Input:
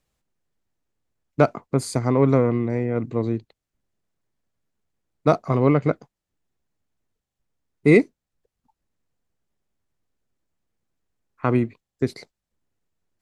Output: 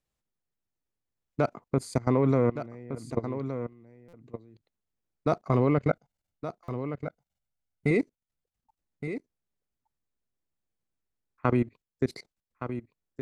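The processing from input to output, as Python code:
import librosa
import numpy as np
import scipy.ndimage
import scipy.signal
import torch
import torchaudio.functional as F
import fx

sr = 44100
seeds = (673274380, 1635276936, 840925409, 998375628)

y = fx.comb(x, sr, ms=1.4, depth=0.61, at=(5.88, 7.91))
y = fx.level_steps(y, sr, step_db=21)
y = y + 10.0 ** (-10.0 / 20.0) * np.pad(y, (int(1168 * sr / 1000.0), 0))[:len(y)]
y = fx.buffer_glitch(y, sr, at_s=(4.08, 6.63), block=256, repeats=8)
y = F.gain(torch.from_numpy(y), -1.5).numpy()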